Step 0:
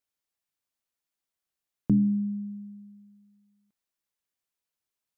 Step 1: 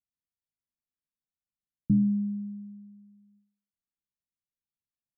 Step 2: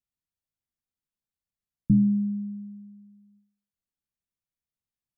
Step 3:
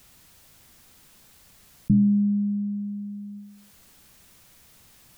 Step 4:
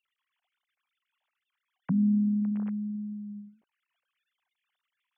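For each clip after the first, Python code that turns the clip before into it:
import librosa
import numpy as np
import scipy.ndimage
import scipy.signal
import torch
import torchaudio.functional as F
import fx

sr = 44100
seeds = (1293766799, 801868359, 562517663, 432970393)

y1 = scipy.signal.sosfilt(scipy.signal.cheby2(4, 50, 660.0, 'lowpass', fs=sr, output='sos'), x)
y1 = fx.end_taper(y1, sr, db_per_s=120.0)
y2 = fx.low_shelf(y1, sr, hz=230.0, db=9.0)
y2 = y2 * 10.0 ** (-2.0 / 20.0)
y3 = fx.env_flatten(y2, sr, amount_pct=50)
y4 = fx.sine_speech(y3, sr)
y4 = y4 * 10.0 ** (-4.5 / 20.0)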